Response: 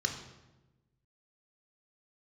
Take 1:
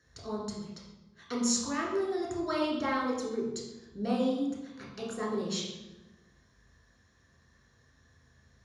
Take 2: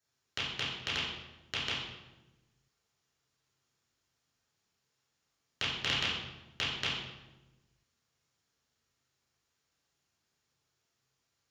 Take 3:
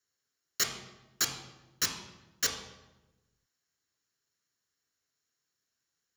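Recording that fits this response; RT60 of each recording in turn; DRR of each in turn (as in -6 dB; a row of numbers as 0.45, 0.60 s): 3; 1.1, 1.1, 1.1 s; -3.5, -9.5, 3.5 dB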